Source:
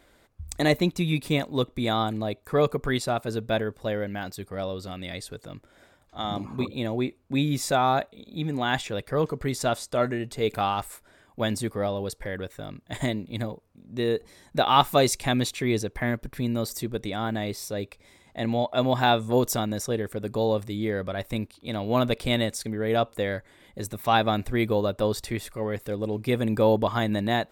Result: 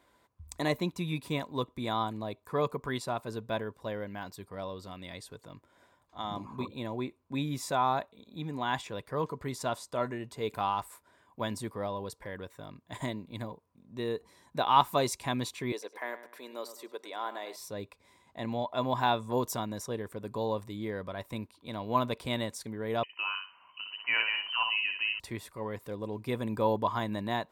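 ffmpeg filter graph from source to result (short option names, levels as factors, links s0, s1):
-filter_complex "[0:a]asettb=1/sr,asplit=3[s0][s1][s2];[s0]atrim=end=15.724[s3];[s1]atrim=start=15.72:end=17.56,asetpts=PTS-STARTPTS,afade=t=in:d=0.004:c=qsin,afade=t=out:st=1.836:d=0.004:c=qsin,highpass=f=390:w=0.5412,highpass=f=390:w=1.3066,deesser=0.7,asplit=2[s4][s5];[s5]adelay=102,lowpass=f=3000:p=1,volume=0.251,asplit=2[s6][s7];[s7]adelay=102,lowpass=f=3000:p=1,volume=0.36,asplit=2[s8][s9];[s9]adelay=102,lowpass=f=3000:p=1,volume=0.36,asplit=2[s10][s11];[s11]adelay=102,lowpass=f=3000:p=1,volume=0.36[s12];[s4][s6][s8][s10][s12]amix=inputs=5:normalize=0,atrim=end_sample=81144[s13];[s2]atrim=start=17.556[s14];[s3][s13]acrossfade=d=0.004:c1=hsin:c2=qsin[s15];[s15][s14]acrossfade=d=0.004:c1=qsin:c2=hsin,asettb=1/sr,asplit=3[s16][s17][s18];[s16]atrim=end=23.034[s19];[s17]atrim=start=23.03:end=25.2,asetpts=PTS-STARTPTS,afade=t=in:d=0.004:c=qsin,afade=t=out:st=2.166:d=0.004:c=qsin,aecho=1:1:62|124|186:0.562|0.141|0.0351,atrim=end_sample=95697,lowpass=f=2600:t=q:w=0.5098,lowpass=f=2600:t=q:w=0.6013,lowpass=f=2600:t=q:w=0.9,lowpass=f=2600:t=q:w=2.563,afreqshift=-3100[s20];[s18]atrim=start=25.196[s21];[s19][s20]acrossfade=d=0.004:c1=hsin:c2=qsin[s22];[s22][s21]acrossfade=d=0.004:c1=qsin:c2=hsin,highpass=65,equalizer=f=1000:w=6.3:g=13.5,volume=0.376"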